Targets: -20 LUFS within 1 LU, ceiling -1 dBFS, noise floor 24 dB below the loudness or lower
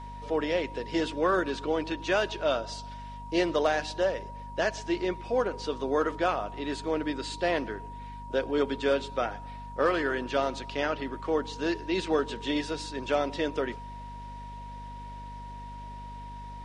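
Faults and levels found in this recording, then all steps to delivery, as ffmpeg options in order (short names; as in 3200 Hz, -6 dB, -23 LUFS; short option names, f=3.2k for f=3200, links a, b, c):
hum 50 Hz; harmonics up to 250 Hz; hum level -41 dBFS; steady tone 950 Hz; tone level -42 dBFS; loudness -30.0 LUFS; peak -13.5 dBFS; loudness target -20.0 LUFS
-> -af "bandreject=f=50:t=h:w=4,bandreject=f=100:t=h:w=4,bandreject=f=150:t=h:w=4,bandreject=f=200:t=h:w=4,bandreject=f=250:t=h:w=4"
-af "bandreject=f=950:w=30"
-af "volume=10dB"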